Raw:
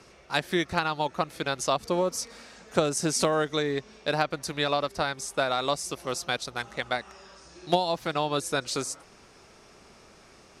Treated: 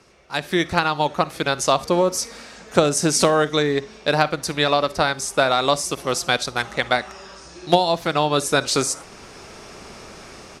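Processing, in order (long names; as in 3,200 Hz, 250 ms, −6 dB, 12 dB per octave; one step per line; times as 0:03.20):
automatic gain control gain up to 14.5 dB
on a send: convolution reverb RT60 0.30 s, pre-delay 41 ms, DRR 18.5 dB
on the sum: level −1 dB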